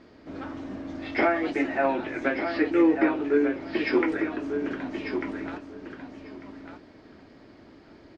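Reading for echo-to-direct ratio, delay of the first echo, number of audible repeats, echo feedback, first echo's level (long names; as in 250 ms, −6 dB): −7.5 dB, 1,196 ms, 2, 15%, −7.5 dB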